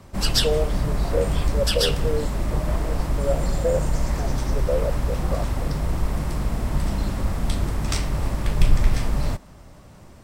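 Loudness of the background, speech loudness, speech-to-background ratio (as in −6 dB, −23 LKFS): −25.5 LKFS, −29.0 LKFS, −3.5 dB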